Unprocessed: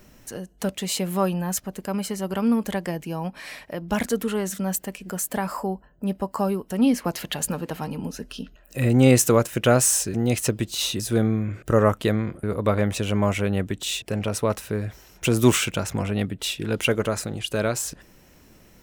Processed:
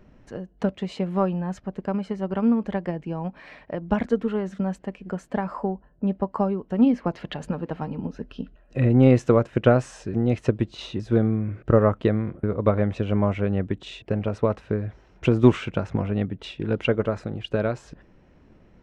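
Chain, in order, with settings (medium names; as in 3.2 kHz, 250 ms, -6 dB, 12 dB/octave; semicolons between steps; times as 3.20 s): transient shaper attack +5 dB, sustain 0 dB; tape spacing loss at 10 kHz 36 dB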